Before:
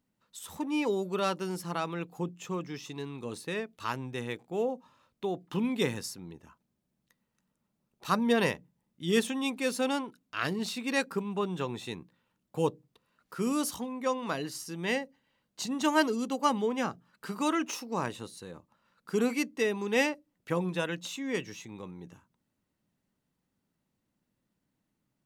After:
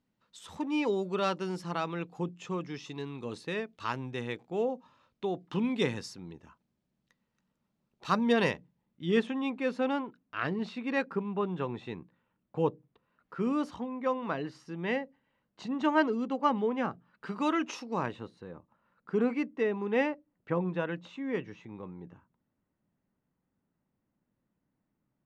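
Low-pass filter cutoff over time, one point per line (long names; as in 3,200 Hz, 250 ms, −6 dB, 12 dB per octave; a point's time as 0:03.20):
0:08.50 5,200 Hz
0:09.29 2,200 Hz
0:16.89 2,200 Hz
0:17.83 4,700 Hz
0:18.32 1,800 Hz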